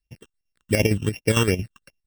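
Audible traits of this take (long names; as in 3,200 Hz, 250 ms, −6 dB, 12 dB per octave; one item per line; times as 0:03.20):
a buzz of ramps at a fixed pitch in blocks of 16 samples
phaser sweep stages 8, 2.7 Hz, lowest notch 620–1,300 Hz
chopped level 8.8 Hz, depth 60%, duty 60%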